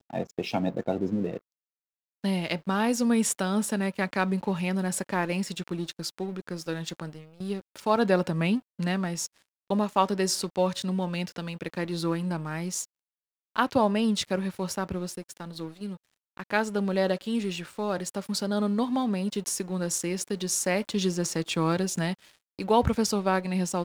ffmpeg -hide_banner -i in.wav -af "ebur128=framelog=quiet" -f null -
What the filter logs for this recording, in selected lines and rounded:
Integrated loudness:
  I:         -28.4 LUFS
  Threshold: -38.7 LUFS
Loudness range:
  LRA:         3.7 LU
  Threshold: -48.9 LUFS
  LRA low:   -30.9 LUFS
  LRA high:  -27.2 LUFS